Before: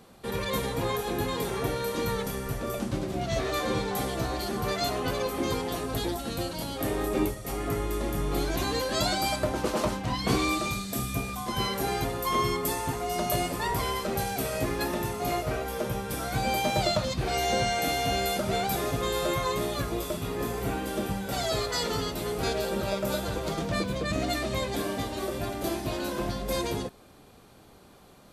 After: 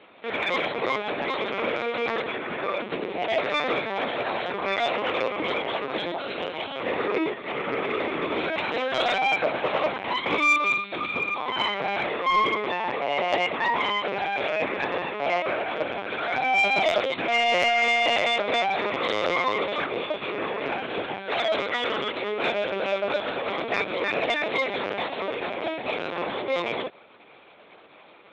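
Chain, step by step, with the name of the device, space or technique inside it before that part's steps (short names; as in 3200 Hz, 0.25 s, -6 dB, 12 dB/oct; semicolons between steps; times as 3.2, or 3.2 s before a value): talking toy (LPC vocoder at 8 kHz pitch kept; HPF 380 Hz 12 dB/oct; bell 2300 Hz +8 dB 0.44 oct; soft clip -18.5 dBFS, distortion -20 dB); gain +6.5 dB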